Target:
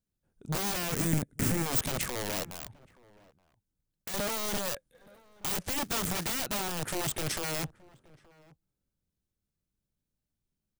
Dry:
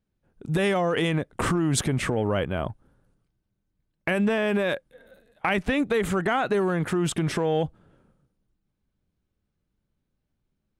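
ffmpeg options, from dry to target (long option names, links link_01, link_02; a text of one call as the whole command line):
ffmpeg -i in.wav -filter_complex "[0:a]aeval=exprs='(mod(10.6*val(0)+1,2)-1)/10.6':channel_layout=same,asettb=1/sr,asplit=3[link_01][link_02][link_03];[link_01]atrim=end=0.924[link_04];[link_02]atrim=start=0.92:end=1.66,asetpts=PTS-STARTPTS,afade=type=in:duration=0.004:curve=qsin,afade=type=out:start_time=0.736:duration=0.004:curve=qsin,equalizer=frequency=125:width_type=o:width=1:gain=8,equalizer=frequency=250:width_type=o:width=1:gain=10,equalizer=frequency=500:width_type=o:width=1:gain=-4,equalizer=frequency=1000:width_type=o:width=1:gain=-9,equalizer=frequency=2000:width_type=o:width=1:gain=4,equalizer=frequency=4000:width_type=o:width=1:gain=-9,equalizer=frequency=8000:width_type=o:width=1:gain=4[link_05];[link_03]atrim=start=1.656[link_06];[link_04][link_05]acrossfade=duration=0.004:curve1=hsin:curve2=qsin[link_07];[link_07][link_06]acrossfade=duration=0.004:curve1=qsin:curve2=hsin,asettb=1/sr,asplit=3[link_08][link_09][link_10];[link_08]atrim=end=2.434[link_11];[link_09]atrim=start=2.43:end=4.14,asetpts=PTS-STARTPTS,afade=type=in:duration=0.004:curve=qsin,afade=type=out:start_time=1.706:duration=0.004:curve=qsin,acompressor=threshold=-45dB:ratio=1.5[link_12];[link_10]atrim=start=4.136[link_13];[link_11][link_12]acrossfade=duration=0.004:curve1=hsin:curve2=qsin[link_14];[link_14][link_13]acrossfade=duration=0.004:curve1=qsin:curve2=hsin,asettb=1/sr,asplit=3[link_15][link_16][link_17];[link_15]atrim=end=5.814[link_18];[link_16]atrim=start=5.81:end=6.33,asetpts=PTS-STARTPTS,afade=type=in:duration=0.004:curve=qsin,afade=type=out:start_time=0.516:duration=0.004:curve=qsin,acrusher=bits=3:mode=log:mix=0:aa=0.000001[link_19];[link_17]atrim=start=6.326[link_20];[link_18][link_19]acrossfade=duration=0.004:curve1=hsin:curve2=qsin[link_21];[link_21][link_20]acrossfade=duration=0.004:curve1=qsin:curve2=hsin,bass=frequency=250:gain=2,treble=frequency=4000:gain=12,aeval=exprs='0.531*(cos(1*acos(clip(val(0)/0.531,-1,1)))-cos(1*PI/2))+0.0119*(cos(3*acos(clip(val(0)/0.531,-1,1)))-cos(3*PI/2))+0.0188*(cos(5*acos(clip(val(0)/0.531,-1,1)))-cos(5*PI/2))+0.0668*(cos(7*acos(clip(val(0)/0.531,-1,1)))-cos(7*PI/2))':channel_layout=same,deesser=0.45,asplit=2[link_22][link_23];[link_23]adelay=874.6,volume=-23dB,highshelf=frequency=4000:gain=-19.7[link_24];[link_22][link_24]amix=inputs=2:normalize=0,volume=2dB" out.wav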